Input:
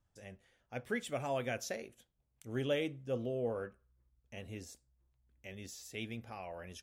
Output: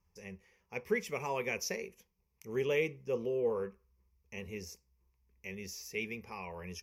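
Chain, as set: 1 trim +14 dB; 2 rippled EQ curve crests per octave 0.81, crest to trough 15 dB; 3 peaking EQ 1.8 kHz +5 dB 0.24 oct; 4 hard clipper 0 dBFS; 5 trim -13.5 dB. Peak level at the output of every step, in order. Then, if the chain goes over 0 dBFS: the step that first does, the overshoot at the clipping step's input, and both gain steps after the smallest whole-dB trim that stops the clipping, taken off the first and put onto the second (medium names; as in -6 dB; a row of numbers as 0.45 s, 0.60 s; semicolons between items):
-8.0 dBFS, -5.5 dBFS, -5.0 dBFS, -5.0 dBFS, -18.5 dBFS; nothing clips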